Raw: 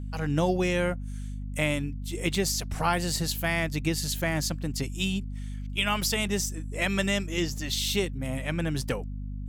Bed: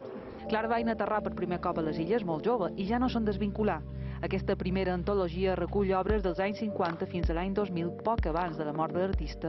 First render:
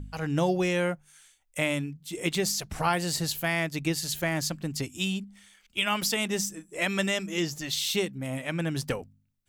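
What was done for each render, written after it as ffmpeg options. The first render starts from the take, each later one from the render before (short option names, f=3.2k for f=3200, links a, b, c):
-af "bandreject=f=50:t=h:w=4,bandreject=f=100:t=h:w=4,bandreject=f=150:t=h:w=4,bandreject=f=200:t=h:w=4,bandreject=f=250:t=h:w=4"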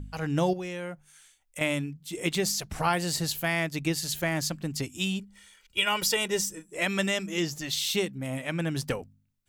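-filter_complex "[0:a]asettb=1/sr,asplit=3[a][b][c];[a]atrim=end=0.534[d];[b]atrim=start=0.53:end=1.61,asetpts=PTS-STARTPTS,afade=t=in:d=0.004:c=qsin,afade=t=out:st=1.076:d=0.004:c=qsin,acompressor=threshold=-37dB:ratio=2.5:attack=3.2:release=140:knee=1:detection=peak[e];[c]atrim=start=1.606[f];[d][e]acrossfade=d=0.004:c1=hsin:c2=qsin[g];[g][f]acrossfade=d=0.004:c1=qsin:c2=hsin,asettb=1/sr,asplit=3[h][i][j];[h]atrim=end=5.194[k];[i]atrim=start=5.19:end=6.66,asetpts=PTS-STARTPTS,afade=t=in:d=0.004:c=qsin,afade=t=out:st=1.466:d=0.004:c=qsin,aecho=1:1:2.1:0.65,atrim=end_sample=64827[l];[j]atrim=start=6.656[m];[k][l]acrossfade=d=0.004:c1=hsin:c2=qsin[n];[n][m]acrossfade=d=0.004:c1=qsin:c2=hsin"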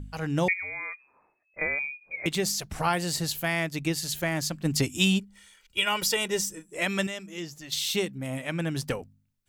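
-filter_complex "[0:a]asettb=1/sr,asplit=3[a][b][c];[a]atrim=end=0.484[d];[b]atrim=start=0.48:end=2.26,asetpts=PTS-STARTPTS,afade=t=in:d=0.004:c=qsin,afade=t=out:st=1.776:d=0.004:c=qsin,lowpass=f=2.2k:t=q:w=0.5098,lowpass=f=2.2k:t=q:w=0.6013,lowpass=f=2.2k:t=q:w=0.9,lowpass=f=2.2k:t=q:w=2.563,afreqshift=-2600[e];[c]atrim=start=2.256[f];[d][e]acrossfade=d=0.004:c1=hsin:c2=qsin[g];[g][f]acrossfade=d=0.004:c1=qsin:c2=hsin,asplit=3[h][i][j];[h]afade=t=out:st=4.64:d=0.02[k];[i]acontrast=77,afade=t=in:st=4.64:d=0.02,afade=t=out:st=5.18:d=0.02[l];[j]afade=t=in:st=5.18:d=0.02[m];[k][l][m]amix=inputs=3:normalize=0,asplit=3[n][o][p];[n]atrim=end=7.072[q];[o]atrim=start=7.068:end=7.722,asetpts=PTS-STARTPTS,volume=-8dB[r];[p]atrim=start=7.718[s];[q][r]acrossfade=d=0.004:c1=hsin:c2=hsin[t];[t][s]acrossfade=d=0.004:c1=hsin:c2=hsin"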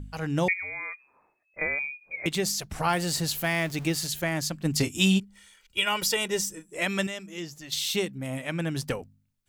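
-filter_complex "[0:a]asettb=1/sr,asplit=3[a][b][c];[a]atrim=end=2.894[d];[b]atrim=start=2.89:end=4.07,asetpts=PTS-STARTPTS,afade=t=in:d=0.004:c=qsin,afade=t=out:st=1.176:d=0.004:c=qsin,aeval=exprs='val(0)+0.5*0.0126*sgn(val(0))':c=same[e];[c]atrim=start=4.066[f];[d][e]acrossfade=d=0.004:c1=hsin:c2=qsin[g];[g][f]acrossfade=d=0.004:c1=qsin:c2=hsin,asettb=1/sr,asplit=3[h][i][j];[h]atrim=end=4.784[k];[i]atrim=start=4.78:end=5.2,asetpts=PTS-STARTPTS,afade=t=in:d=0.004:c=qsin,afade=t=out:st=0.416:d=0.004:c=qsin,asplit=2[l][m];[m]adelay=26,volume=-10dB[n];[l][n]amix=inputs=2:normalize=0,atrim=end_sample=18522[o];[j]atrim=start=5.196[p];[k][o]acrossfade=d=0.004:c1=hsin:c2=qsin[q];[q][p]acrossfade=d=0.004:c1=qsin:c2=hsin"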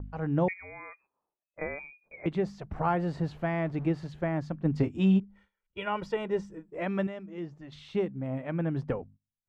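-af "agate=range=-18dB:threshold=-51dB:ratio=16:detection=peak,lowpass=1.1k"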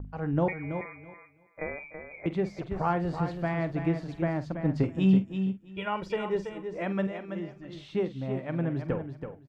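-filter_complex "[0:a]asplit=2[a][b];[b]adelay=47,volume=-13dB[c];[a][c]amix=inputs=2:normalize=0,aecho=1:1:329|658|987:0.398|0.0677|0.0115"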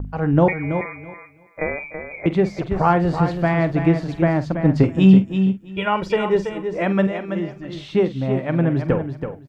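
-af "volume=11dB,alimiter=limit=-3dB:level=0:latency=1"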